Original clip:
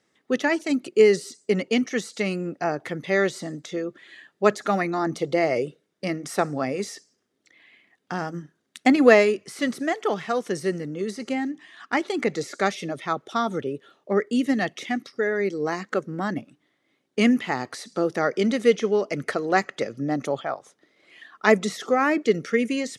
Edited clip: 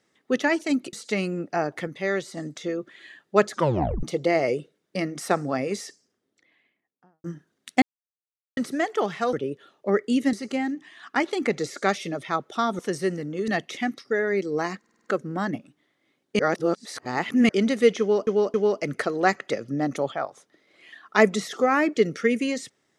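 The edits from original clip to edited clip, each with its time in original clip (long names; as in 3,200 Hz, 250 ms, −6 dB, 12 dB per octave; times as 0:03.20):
0:00.93–0:02.01: remove
0:02.95–0:03.45: clip gain −4.5 dB
0:04.61: tape stop 0.50 s
0:06.91–0:08.32: fade out and dull
0:08.90–0:09.65: silence
0:10.41–0:11.10: swap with 0:13.56–0:14.56
0:15.87: stutter 0.05 s, 6 plays
0:17.22–0:18.32: reverse
0:18.83–0:19.10: repeat, 3 plays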